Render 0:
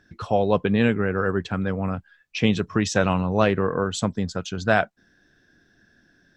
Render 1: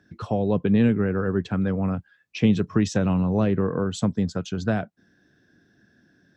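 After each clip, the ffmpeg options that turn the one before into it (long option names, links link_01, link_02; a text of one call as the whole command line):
ffmpeg -i in.wav -filter_complex "[0:a]acrossover=split=360[link_01][link_02];[link_02]acompressor=threshold=-26dB:ratio=4[link_03];[link_01][link_03]amix=inputs=2:normalize=0,highpass=100,lowshelf=frequency=460:gain=8.5,volume=-4dB" out.wav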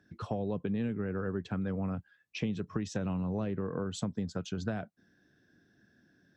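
ffmpeg -i in.wav -af "acompressor=threshold=-24dB:ratio=6,volume=-6dB" out.wav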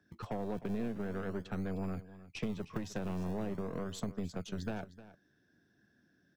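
ffmpeg -i in.wav -filter_complex "[0:a]aeval=exprs='0.1*(cos(1*acos(clip(val(0)/0.1,-1,1)))-cos(1*PI/2))+0.0126*(cos(6*acos(clip(val(0)/0.1,-1,1)))-cos(6*PI/2))':channel_layout=same,acrossover=split=130|980[link_01][link_02][link_03];[link_01]acrusher=samples=36:mix=1:aa=0.000001:lfo=1:lforange=36:lforate=0.41[link_04];[link_04][link_02][link_03]amix=inputs=3:normalize=0,aecho=1:1:308:0.158,volume=-4.5dB" out.wav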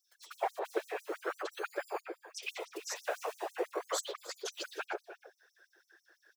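ffmpeg -i in.wav -filter_complex "[0:a]acrossover=split=450|3400[link_01][link_02][link_03];[link_02]adelay=120[link_04];[link_01]adelay=260[link_05];[link_05][link_04][link_03]amix=inputs=3:normalize=0,afftfilt=real='hypot(re,im)*cos(2*PI*random(0))':imag='hypot(re,im)*sin(2*PI*random(1))':win_size=512:overlap=0.75,afftfilt=real='re*gte(b*sr/1024,310*pow(5700/310,0.5+0.5*sin(2*PI*6*pts/sr)))':imag='im*gte(b*sr/1024,310*pow(5700/310,0.5+0.5*sin(2*PI*6*pts/sr)))':win_size=1024:overlap=0.75,volume=17.5dB" out.wav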